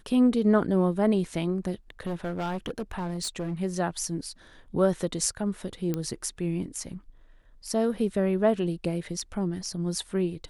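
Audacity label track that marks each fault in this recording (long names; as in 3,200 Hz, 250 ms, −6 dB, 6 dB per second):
1.900000	3.540000	clipping −27 dBFS
5.940000	5.940000	click −16 dBFS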